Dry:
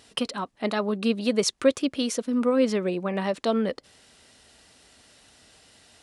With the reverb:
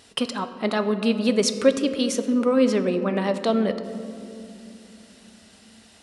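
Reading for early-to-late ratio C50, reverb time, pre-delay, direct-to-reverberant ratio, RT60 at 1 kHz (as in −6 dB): 10.5 dB, 2.7 s, 3 ms, 9.0 dB, 2.2 s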